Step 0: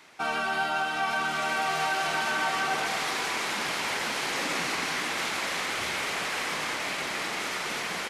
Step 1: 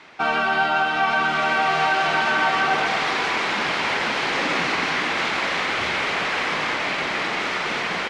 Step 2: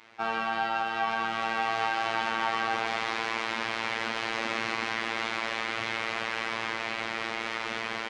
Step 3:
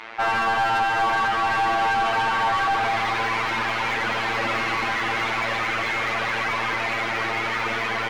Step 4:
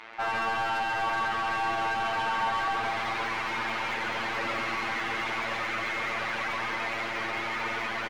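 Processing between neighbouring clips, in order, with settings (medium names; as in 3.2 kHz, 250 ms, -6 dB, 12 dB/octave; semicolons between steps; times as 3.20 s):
low-pass 3.8 kHz 12 dB/octave; trim +8 dB
robot voice 113 Hz; trim -6.5 dB
overdrive pedal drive 30 dB, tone 1.8 kHz, clips at -10.5 dBFS; trim -2 dB
delay 136 ms -6 dB; trim -7.5 dB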